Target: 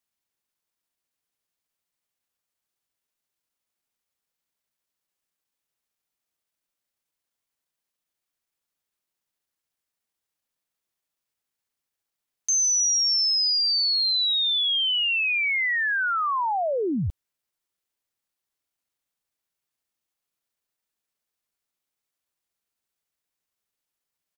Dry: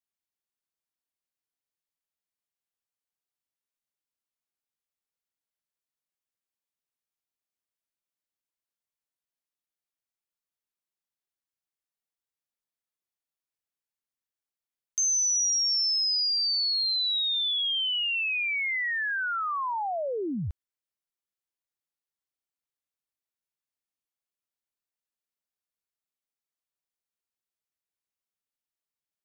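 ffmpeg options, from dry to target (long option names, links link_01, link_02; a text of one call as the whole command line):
ffmpeg -i in.wav -filter_complex "[0:a]asplit=2[link_01][link_02];[link_02]alimiter=level_in=7.5dB:limit=-24dB:level=0:latency=1:release=96,volume=-7.5dB,volume=3dB[link_03];[link_01][link_03]amix=inputs=2:normalize=0,atempo=1.2" out.wav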